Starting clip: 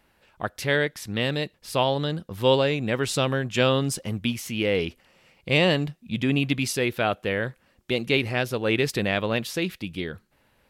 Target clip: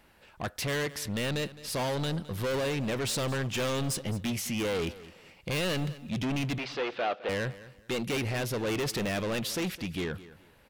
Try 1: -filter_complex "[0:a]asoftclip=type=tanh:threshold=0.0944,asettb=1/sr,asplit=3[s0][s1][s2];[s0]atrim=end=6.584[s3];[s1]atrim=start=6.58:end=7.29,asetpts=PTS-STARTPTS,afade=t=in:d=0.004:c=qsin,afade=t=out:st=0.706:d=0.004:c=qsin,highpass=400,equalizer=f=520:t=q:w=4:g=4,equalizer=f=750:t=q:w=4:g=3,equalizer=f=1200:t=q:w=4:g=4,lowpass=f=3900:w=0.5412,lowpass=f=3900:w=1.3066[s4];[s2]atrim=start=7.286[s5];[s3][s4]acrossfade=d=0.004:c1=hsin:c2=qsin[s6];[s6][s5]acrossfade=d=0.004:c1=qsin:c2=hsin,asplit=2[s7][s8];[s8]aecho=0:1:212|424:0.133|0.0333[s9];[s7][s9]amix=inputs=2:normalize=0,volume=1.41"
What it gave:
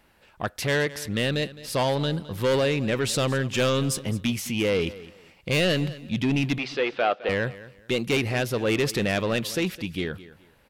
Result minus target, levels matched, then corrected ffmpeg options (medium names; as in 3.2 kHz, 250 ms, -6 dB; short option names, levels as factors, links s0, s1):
saturation: distortion -6 dB
-filter_complex "[0:a]asoftclip=type=tanh:threshold=0.0282,asettb=1/sr,asplit=3[s0][s1][s2];[s0]atrim=end=6.584[s3];[s1]atrim=start=6.58:end=7.29,asetpts=PTS-STARTPTS,afade=t=in:d=0.004:c=qsin,afade=t=out:st=0.706:d=0.004:c=qsin,highpass=400,equalizer=f=520:t=q:w=4:g=4,equalizer=f=750:t=q:w=4:g=3,equalizer=f=1200:t=q:w=4:g=4,lowpass=f=3900:w=0.5412,lowpass=f=3900:w=1.3066[s4];[s2]atrim=start=7.286[s5];[s3][s4]acrossfade=d=0.004:c1=hsin:c2=qsin[s6];[s6][s5]acrossfade=d=0.004:c1=qsin:c2=hsin,asplit=2[s7][s8];[s8]aecho=0:1:212|424:0.133|0.0333[s9];[s7][s9]amix=inputs=2:normalize=0,volume=1.41"